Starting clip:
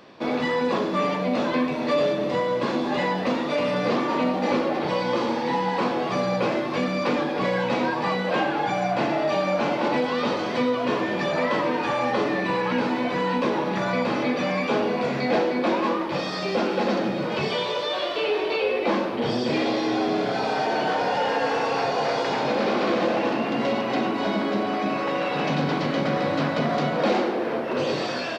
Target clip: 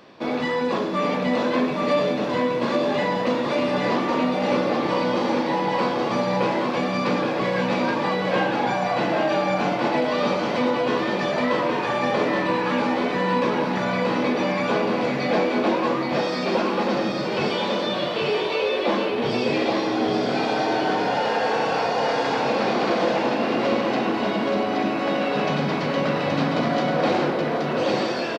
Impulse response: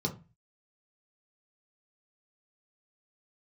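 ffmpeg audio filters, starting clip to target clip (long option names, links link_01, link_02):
-af "aecho=1:1:824:0.668"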